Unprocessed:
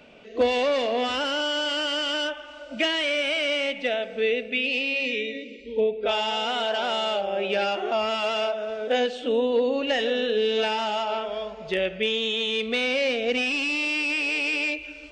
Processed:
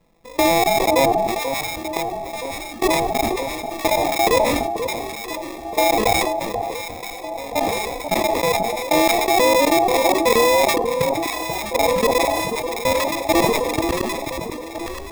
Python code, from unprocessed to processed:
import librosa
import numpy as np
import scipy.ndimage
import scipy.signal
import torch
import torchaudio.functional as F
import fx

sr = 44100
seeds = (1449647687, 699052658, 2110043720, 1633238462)

p1 = fx.pitch_ramps(x, sr, semitones=8.0, every_ms=854)
p2 = fx.high_shelf(p1, sr, hz=5500.0, db=-8.0)
p3 = fx.hum_notches(p2, sr, base_hz=50, count=7)
p4 = p3 + 0.75 * np.pad(p3, (int(5.9 * sr / 1000.0), 0))[:len(p3)]
p5 = fx.level_steps(p4, sr, step_db=24)
p6 = fx.riaa(p5, sr, side='playback')
p7 = fx.sample_hold(p6, sr, seeds[0], rate_hz=1500.0, jitter_pct=0)
p8 = p7 + fx.echo_alternate(p7, sr, ms=486, hz=990.0, feedback_pct=75, wet_db=-7, dry=0)
p9 = fx.sustainer(p8, sr, db_per_s=27.0)
y = F.gain(torch.from_numpy(p9), 6.5).numpy()